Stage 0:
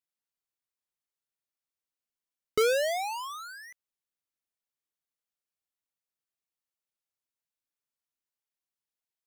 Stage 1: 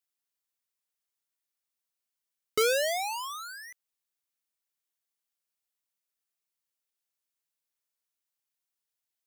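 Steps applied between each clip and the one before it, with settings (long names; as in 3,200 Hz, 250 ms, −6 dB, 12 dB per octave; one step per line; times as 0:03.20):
spectral tilt +1.5 dB per octave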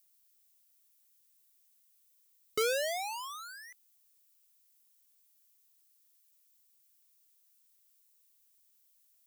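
background noise violet −64 dBFS
level −5 dB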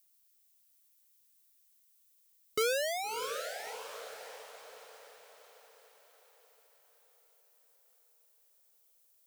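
feedback delay with all-pass diffusion 630 ms, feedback 49%, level −8 dB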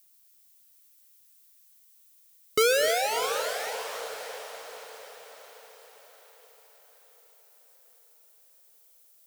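reverb whose tail is shaped and stops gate 330 ms rising, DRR 8 dB
level +8 dB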